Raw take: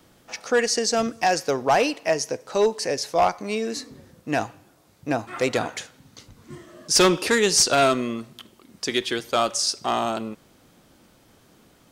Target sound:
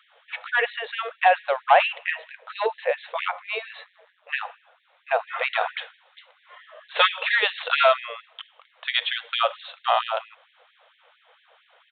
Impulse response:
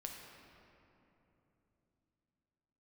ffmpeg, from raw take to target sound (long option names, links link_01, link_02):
-filter_complex "[0:a]asettb=1/sr,asplit=3[link_01][link_02][link_03];[link_01]atrim=end=3.844[link_04];[link_02]atrim=start=3.84:end=4.29,asetpts=PTS-STARTPTS,afade=type=in:duration=0.004:curve=qsin,afade=type=out:start_time=0.446:duration=0.004:curve=qsin,aeval=exprs='val(0)*sin(2*PI*91*n/s)':channel_layout=same[link_05];[link_03]atrim=start=4.286[link_06];[link_04][link_05]acrossfade=duration=0.004:curve1=hsin:curve2=qsin[link_07];[link_07][link_06]acrossfade=duration=0.004:curve1=qsin:curve2=hsin,aresample=8000,aresample=44100,afftfilt=real='re*gte(b*sr/1024,430*pow(1700/430,0.5+0.5*sin(2*PI*4.4*pts/sr)))':imag='im*gte(b*sr/1024,430*pow(1700/430,0.5+0.5*sin(2*PI*4.4*pts/sr)))':win_size=1024:overlap=0.75,volume=4.5dB"